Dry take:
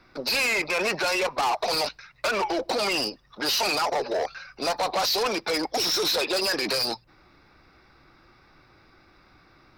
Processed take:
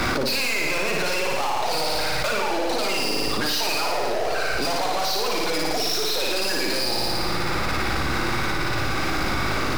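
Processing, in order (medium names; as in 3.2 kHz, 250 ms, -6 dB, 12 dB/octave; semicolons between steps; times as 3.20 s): partial rectifier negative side -12 dB; power-law waveshaper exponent 0.5; on a send: flutter echo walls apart 9.7 m, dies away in 1.2 s; on the sum: level flattener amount 100%; trim -4.5 dB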